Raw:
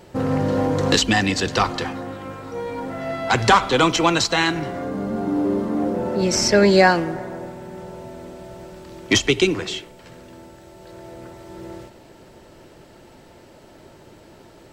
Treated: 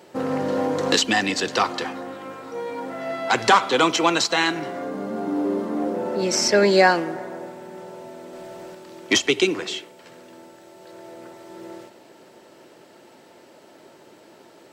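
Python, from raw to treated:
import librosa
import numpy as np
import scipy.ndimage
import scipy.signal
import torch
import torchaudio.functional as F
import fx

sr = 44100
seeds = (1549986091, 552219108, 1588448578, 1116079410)

y = scipy.signal.sosfilt(scipy.signal.butter(2, 250.0, 'highpass', fs=sr, output='sos'), x)
y = fx.leveller(y, sr, passes=1, at=(8.33, 8.75))
y = F.gain(torch.from_numpy(y), -1.0).numpy()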